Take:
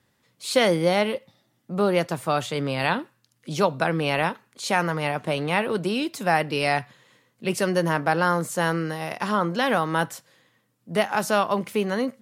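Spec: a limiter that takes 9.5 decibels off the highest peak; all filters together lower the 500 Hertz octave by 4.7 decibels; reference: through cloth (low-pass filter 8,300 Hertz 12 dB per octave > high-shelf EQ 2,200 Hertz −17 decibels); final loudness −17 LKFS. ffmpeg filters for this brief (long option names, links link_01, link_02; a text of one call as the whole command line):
ffmpeg -i in.wav -af "equalizer=frequency=500:width_type=o:gain=-4.5,alimiter=limit=-17dB:level=0:latency=1,lowpass=8300,highshelf=frequency=2200:gain=-17,volume=14.5dB" out.wav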